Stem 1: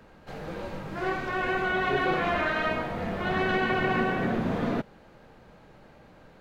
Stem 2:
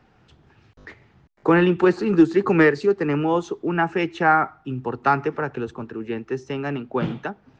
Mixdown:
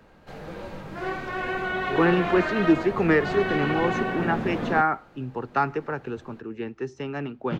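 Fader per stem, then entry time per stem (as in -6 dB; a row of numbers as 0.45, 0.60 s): -1.0, -4.5 dB; 0.00, 0.50 s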